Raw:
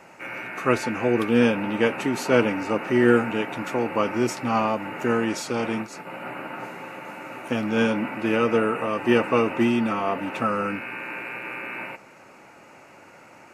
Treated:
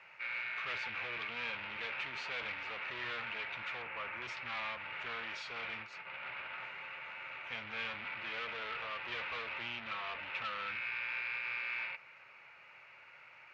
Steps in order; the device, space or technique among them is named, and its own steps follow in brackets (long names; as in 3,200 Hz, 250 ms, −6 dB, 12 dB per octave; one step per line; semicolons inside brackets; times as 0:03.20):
scooped metal amplifier (tube saturation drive 29 dB, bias 0.5; loudspeaker in its box 89–3,600 Hz, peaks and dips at 100 Hz −4 dB, 190 Hz −6 dB, 360 Hz +3 dB, 760 Hz −5 dB, 2,300 Hz +4 dB; guitar amp tone stack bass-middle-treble 10-0-10)
0:03.82–0:04.22: flat-topped bell 5,400 Hz −10.5 dB
level +1 dB